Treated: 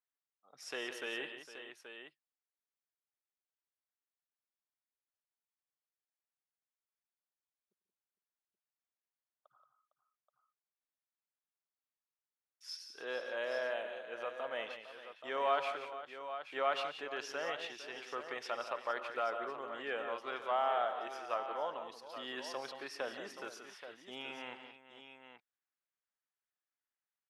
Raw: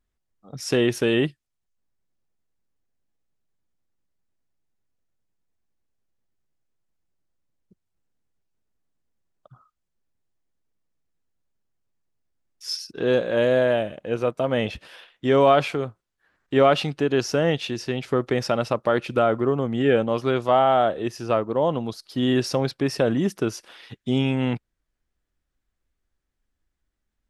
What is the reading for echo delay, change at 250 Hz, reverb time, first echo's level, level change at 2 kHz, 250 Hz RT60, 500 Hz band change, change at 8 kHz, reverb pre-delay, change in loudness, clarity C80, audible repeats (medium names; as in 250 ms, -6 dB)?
95 ms, -29.0 dB, no reverb, -18.0 dB, -10.5 dB, no reverb, -18.5 dB, -16.0 dB, no reverb, -17.0 dB, no reverb, 5